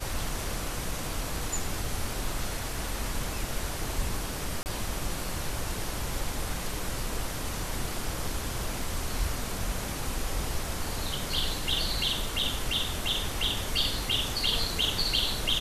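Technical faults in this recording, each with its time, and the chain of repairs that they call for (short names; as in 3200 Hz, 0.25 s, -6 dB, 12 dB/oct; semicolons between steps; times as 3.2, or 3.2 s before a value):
4.63–4.66 gap 29 ms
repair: interpolate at 4.63, 29 ms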